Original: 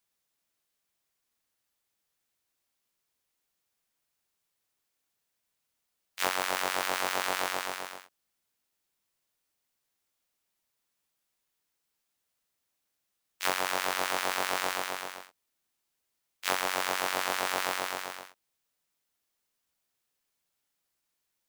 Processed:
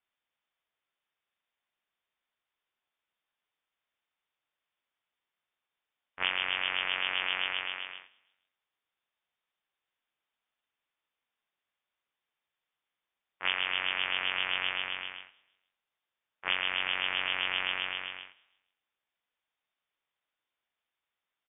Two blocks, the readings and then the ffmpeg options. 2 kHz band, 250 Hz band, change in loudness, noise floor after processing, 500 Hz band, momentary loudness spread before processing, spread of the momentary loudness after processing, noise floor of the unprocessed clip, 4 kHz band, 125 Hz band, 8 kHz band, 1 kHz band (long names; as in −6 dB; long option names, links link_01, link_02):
+2.0 dB, −9.0 dB, 0.0 dB, below −85 dBFS, −11.0 dB, 11 LU, 10 LU, −82 dBFS, +4.5 dB, can't be measured, below −40 dB, −7.5 dB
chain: -filter_complex "[0:a]asplit=2[link_01][link_02];[link_02]asplit=3[link_03][link_04][link_05];[link_03]adelay=158,afreqshift=-62,volume=-24dB[link_06];[link_04]adelay=316,afreqshift=-124,volume=-30.9dB[link_07];[link_05]adelay=474,afreqshift=-186,volume=-37.9dB[link_08];[link_06][link_07][link_08]amix=inputs=3:normalize=0[link_09];[link_01][link_09]amix=inputs=2:normalize=0,lowpass=frequency=3100:width_type=q:width=0.5098,lowpass=frequency=3100:width_type=q:width=0.6013,lowpass=frequency=3100:width_type=q:width=0.9,lowpass=frequency=3100:width_type=q:width=2.563,afreqshift=-3700"